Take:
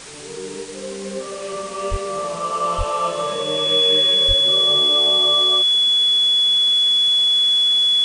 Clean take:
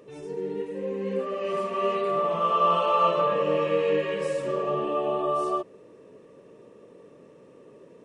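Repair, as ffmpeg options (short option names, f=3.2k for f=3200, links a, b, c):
-filter_complex "[0:a]bandreject=f=3.4k:w=30,asplit=3[a][b][c];[a]afade=t=out:st=1.9:d=0.02[d];[b]highpass=f=140:w=0.5412,highpass=f=140:w=1.3066,afade=t=in:st=1.9:d=0.02,afade=t=out:st=2.02:d=0.02[e];[c]afade=t=in:st=2.02:d=0.02[f];[d][e][f]amix=inputs=3:normalize=0,asplit=3[g][h][i];[g]afade=t=out:st=2.77:d=0.02[j];[h]highpass=f=140:w=0.5412,highpass=f=140:w=1.3066,afade=t=in:st=2.77:d=0.02,afade=t=out:st=2.89:d=0.02[k];[i]afade=t=in:st=2.89:d=0.02[l];[j][k][l]amix=inputs=3:normalize=0,asplit=3[m][n][o];[m]afade=t=out:st=4.27:d=0.02[p];[n]highpass=f=140:w=0.5412,highpass=f=140:w=1.3066,afade=t=in:st=4.27:d=0.02,afade=t=out:st=4.39:d=0.02[q];[o]afade=t=in:st=4.39:d=0.02[r];[p][q][r]amix=inputs=3:normalize=0,afftdn=nr=21:nf=-30"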